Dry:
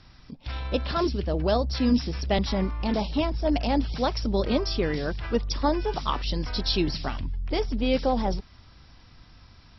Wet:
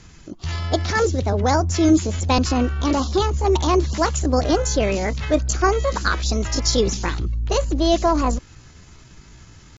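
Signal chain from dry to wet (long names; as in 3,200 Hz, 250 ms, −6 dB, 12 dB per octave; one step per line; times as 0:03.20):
dynamic equaliser 630 Hz, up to −5 dB, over −44 dBFS, Q 7.2
pitch shifter +4.5 semitones
level +6.5 dB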